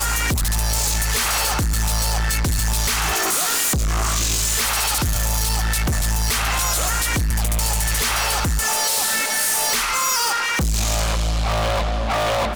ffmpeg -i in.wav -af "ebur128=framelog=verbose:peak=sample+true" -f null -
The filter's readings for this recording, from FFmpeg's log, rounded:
Integrated loudness:
  I:         -19.3 LUFS
  Threshold: -29.3 LUFS
Loudness range:
  LRA:         1.3 LU
  Threshold: -39.1 LUFS
  LRA low:   -19.7 LUFS
  LRA high:  -18.4 LUFS
Sample peak:
  Peak:      -17.2 dBFS
True peak:
  Peak:      -12.9 dBFS